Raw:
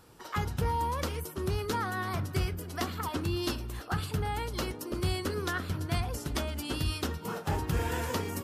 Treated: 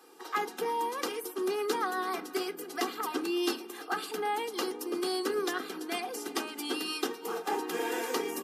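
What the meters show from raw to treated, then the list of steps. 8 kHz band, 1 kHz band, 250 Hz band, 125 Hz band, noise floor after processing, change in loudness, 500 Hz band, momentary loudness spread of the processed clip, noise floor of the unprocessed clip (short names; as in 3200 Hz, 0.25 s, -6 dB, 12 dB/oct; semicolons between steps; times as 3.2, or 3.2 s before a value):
+1.5 dB, +1.5 dB, +0.5 dB, under -25 dB, -47 dBFS, 0.0 dB, +4.0 dB, 5 LU, -46 dBFS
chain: Chebyshev high-pass 180 Hz, order 10; comb 2.5 ms, depth 82%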